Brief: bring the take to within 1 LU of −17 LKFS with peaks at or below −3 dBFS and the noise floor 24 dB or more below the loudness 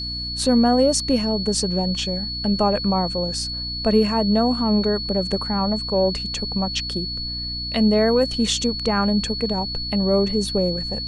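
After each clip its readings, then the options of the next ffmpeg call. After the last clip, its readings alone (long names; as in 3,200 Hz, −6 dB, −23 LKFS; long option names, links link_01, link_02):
mains hum 60 Hz; hum harmonics up to 300 Hz; level of the hum −31 dBFS; interfering tone 4,400 Hz; level of the tone −27 dBFS; integrated loudness −21.0 LKFS; sample peak −6.0 dBFS; target loudness −17.0 LKFS
→ -af "bandreject=frequency=60:width_type=h:width=6,bandreject=frequency=120:width_type=h:width=6,bandreject=frequency=180:width_type=h:width=6,bandreject=frequency=240:width_type=h:width=6,bandreject=frequency=300:width_type=h:width=6"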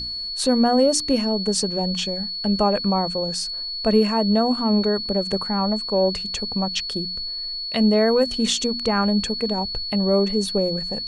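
mains hum none found; interfering tone 4,400 Hz; level of the tone −27 dBFS
→ -af "bandreject=frequency=4400:width=30"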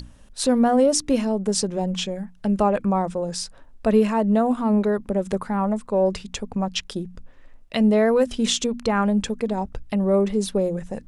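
interfering tone none found; integrated loudness −22.5 LKFS; sample peak −7.0 dBFS; target loudness −17.0 LKFS
→ -af "volume=5.5dB,alimiter=limit=-3dB:level=0:latency=1"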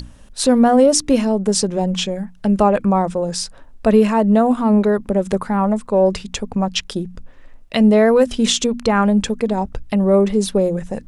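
integrated loudness −17.0 LKFS; sample peak −3.0 dBFS; background noise floor −42 dBFS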